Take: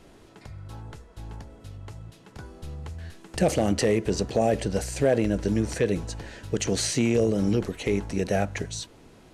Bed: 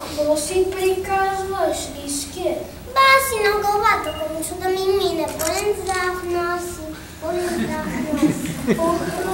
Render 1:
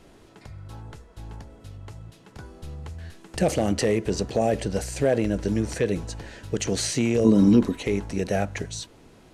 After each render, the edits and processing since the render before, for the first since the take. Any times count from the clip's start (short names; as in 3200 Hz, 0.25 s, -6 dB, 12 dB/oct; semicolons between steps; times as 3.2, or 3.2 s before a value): 7.24–7.81 small resonant body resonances 250/1000/3800 Hz, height 17 dB -> 12 dB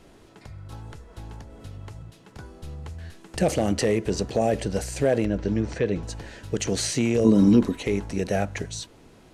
0.72–2.03 three-band squash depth 100%; 5.25–6.03 air absorption 130 m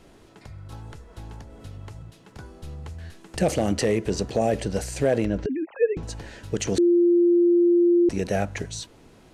5.46–5.97 sine-wave speech; 6.78–8.09 bleep 347 Hz -14.5 dBFS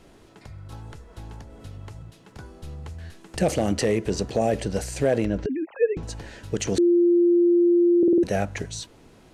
7.98 stutter in place 0.05 s, 5 plays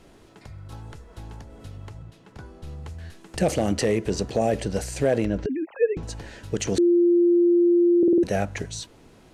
1.89–2.67 high shelf 5000 Hz -7 dB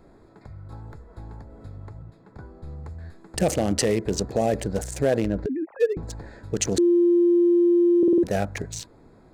Wiener smoothing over 15 samples; high shelf 4400 Hz +10 dB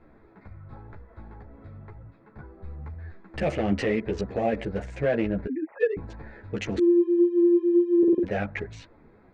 synth low-pass 2300 Hz, resonance Q 1.9; ensemble effect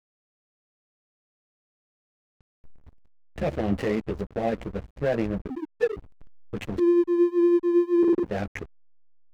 backlash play -26.5 dBFS; requantised 12-bit, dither none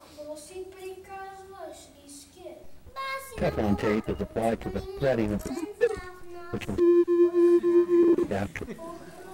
add bed -21 dB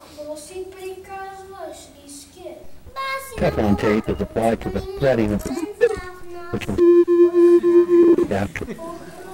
gain +7.5 dB